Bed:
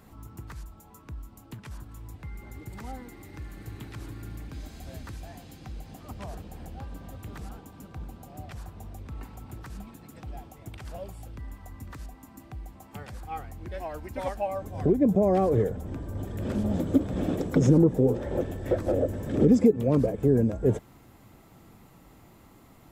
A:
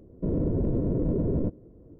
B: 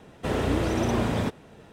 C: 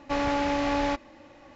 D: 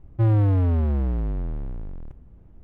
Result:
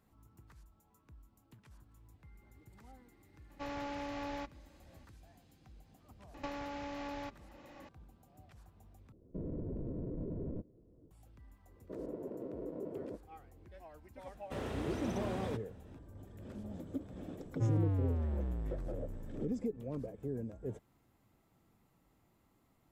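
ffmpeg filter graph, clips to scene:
-filter_complex "[3:a]asplit=2[s0][s1];[1:a]asplit=2[s2][s3];[0:a]volume=0.126[s4];[s1]acompressor=threshold=0.0141:ratio=5:attack=13:release=814:knee=1:detection=peak[s5];[s2]alimiter=limit=0.0794:level=0:latency=1:release=271[s6];[s3]highpass=420[s7];[s4]asplit=2[s8][s9];[s8]atrim=end=9.124[s10];[s6]atrim=end=1.99,asetpts=PTS-STARTPTS,volume=0.251[s11];[s9]atrim=start=11.106[s12];[s0]atrim=end=1.55,asetpts=PTS-STARTPTS,volume=0.178,afade=t=in:d=0.004:c=hsin,afade=t=out:st=1.546:d=0.004:c=hsin,adelay=3500[s13];[s5]atrim=end=1.55,asetpts=PTS-STARTPTS,volume=0.708,afade=t=in:d=0.004:c=hsin,afade=t=out:st=1.546:d=0.004:c=hsin,adelay=279594S[s14];[s7]atrim=end=1.99,asetpts=PTS-STARTPTS,volume=0.376,afade=t=in:d=0.004:c=hsin,afade=t=out:st=1.986:d=0.004:c=hsin,adelay=11670[s15];[2:a]atrim=end=1.72,asetpts=PTS-STARTPTS,volume=0.2,afade=t=in:d=0.004:c=hsin,afade=t=out:st=1.716:d=0.004:c=hsin,adelay=14270[s16];[4:a]atrim=end=2.63,asetpts=PTS-STARTPTS,volume=0.211,afade=t=in:d=0.004:c=hsin,afade=t=out:st=2.626:d=0.004:c=hsin,adelay=17410[s17];[s10][s11]acrossfade=d=0.004:c1=hsin:c2=hsin[s18];[s18][s12]acrossfade=d=0.004:c1=hsin:c2=hsin[s19];[s19][s13][s14][s15][s16][s17]amix=inputs=6:normalize=0"

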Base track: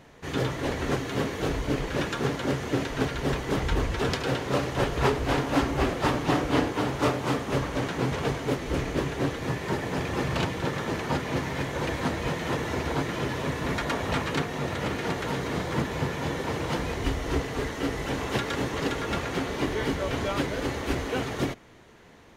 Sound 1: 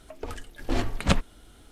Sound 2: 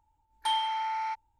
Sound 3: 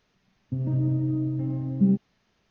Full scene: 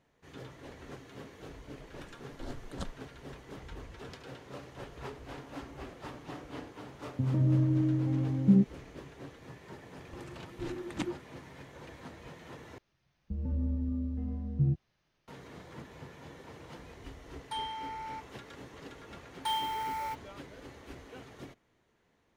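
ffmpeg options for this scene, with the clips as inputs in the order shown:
-filter_complex "[1:a]asplit=2[s0][s1];[3:a]asplit=2[s2][s3];[2:a]asplit=2[s4][s5];[0:a]volume=0.106[s6];[s0]asuperstop=centerf=2300:order=4:qfactor=1.5[s7];[s1]afreqshift=-370[s8];[s3]afreqshift=-56[s9];[s5]acrusher=bits=4:mode=log:mix=0:aa=0.000001[s10];[s6]asplit=2[s11][s12];[s11]atrim=end=12.784[s13];[s9]atrim=end=2.5,asetpts=PTS-STARTPTS,volume=0.447[s14];[s12]atrim=start=15.276[s15];[s7]atrim=end=1.71,asetpts=PTS-STARTPTS,volume=0.141,afade=t=in:d=0.004:c=hsin,afade=t=out:st=1.706:d=0.004:c=hsin,adelay=1710[s16];[s2]atrim=end=2.5,asetpts=PTS-STARTPTS,volume=0.841,afade=t=in:d=0.004:c=hsin,afade=t=out:st=2.496:d=0.004:c=hsin,adelay=6670[s17];[s8]atrim=end=1.71,asetpts=PTS-STARTPTS,volume=0.2,afade=t=in:d=0.004:c=hsin,afade=t=out:st=1.706:d=0.004:c=hsin,adelay=9900[s18];[s4]atrim=end=1.39,asetpts=PTS-STARTPTS,volume=0.355,afade=t=in:d=0.004:c=hsin,afade=t=out:st=1.386:d=0.004:c=hsin,adelay=17060[s19];[s10]atrim=end=1.39,asetpts=PTS-STARTPTS,volume=0.631,afade=t=in:d=0.004:c=hsin,afade=t=out:st=1.386:d=0.004:c=hsin,adelay=19000[s20];[s13][s14]acrossfade=d=0.004:c1=hsin:c2=hsin[s21];[s21][s15]acrossfade=d=0.004:c1=hsin:c2=hsin[s22];[s22][s16][s17][s18][s19][s20]amix=inputs=6:normalize=0"

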